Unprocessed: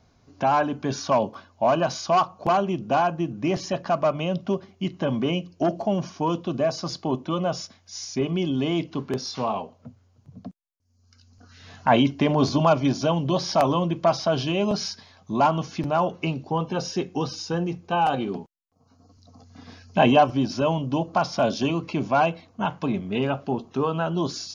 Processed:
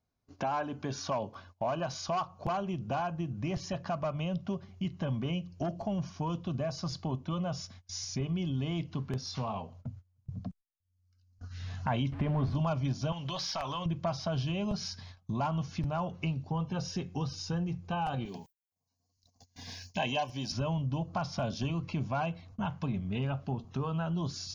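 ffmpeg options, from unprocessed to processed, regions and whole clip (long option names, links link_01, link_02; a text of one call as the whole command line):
ffmpeg -i in.wav -filter_complex "[0:a]asettb=1/sr,asplit=3[link_01][link_02][link_03];[link_01]atrim=end=12.124[link_04];[link_02]atrim=start=12.12:end=12.55,asetpts=PTS-STARTPTS,afade=type=in:duration=0.004:curve=qsin,afade=type=out:start_time=0.426:duration=0.004:curve=qsin,aeval=exprs='val(0)+0.5*0.0398*sgn(val(0))':channel_layout=same,lowpass=2100[link_05];[link_03]atrim=start=12.546[link_06];[link_04][link_05]acrossfade=duration=0.004:curve1=hsin:curve2=qsin[link_07];[link_07][link_06]acrossfade=duration=0.004:curve1=qsin:curve2=hsin,asettb=1/sr,asplit=3[link_08][link_09][link_10];[link_08]atrim=end=13.124[link_11];[link_09]atrim=start=13.12:end=13.86,asetpts=PTS-STARTPTS,afade=type=in:duration=0.004:curve=qsin,afade=type=out:start_time=0.736:duration=0.004:curve=qsin,tiltshelf=frequency=1100:gain=-7,acompressor=threshold=-27dB:ratio=3:attack=3.2:release=140:knee=1:detection=peak,asplit=2[link_12][link_13];[link_13]highpass=frequency=720:poles=1,volume=10dB,asoftclip=type=tanh:threshold=-11.5dB[link_14];[link_12][link_14]amix=inputs=2:normalize=0,lowpass=frequency=3200:poles=1,volume=-6dB[link_15];[link_10]atrim=start=13.856[link_16];[link_11][link_15]acrossfade=duration=0.004:curve1=hsin:curve2=qsin[link_17];[link_17][link_16]acrossfade=duration=0.004:curve1=qsin:curve2=hsin,asettb=1/sr,asplit=3[link_18][link_19][link_20];[link_18]atrim=end=18.254[link_21];[link_19]atrim=start=18.25:end=20.52,asetpts=PTS-STARTPTS,afade=type=in:duration=0.004:curve=qsin,afade=type=out:start_time=2.266:duration=0.004:curve=qsin,asuperstop=centerf=1300:order=4:qfactor=2.8,aemphasis=mode=production:type=riaa[link_22];[link_20]atrim=start=20.516[link_23];[link_21][link_22]acrossfade=duration=0.004:curve1=hsin:curve2=qsin[link_24];[link_24][link_23]acrossfade=duration=0.004:curve1=qsin:curve2=hsin,agate=range=-24dB:threshold=-50dB:ratio=16:detection=peak,asubboost=boost=8.5:cutoff=110,acompressor=threshold=-39dB:ratio=2" out.wav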